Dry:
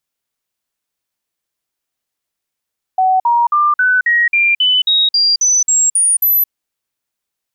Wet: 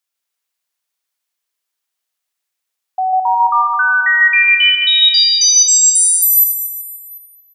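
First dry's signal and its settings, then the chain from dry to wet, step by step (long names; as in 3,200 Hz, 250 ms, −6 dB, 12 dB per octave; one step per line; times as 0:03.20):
stepped sweep 751 Hz up, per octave 3, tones 13, 0.22 s, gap 0.05 s −9 dBFS
high-pass filter 920 Hz 6 dB per octave
on a send: repeating echo 148 ms, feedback 57%, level −3.5 dB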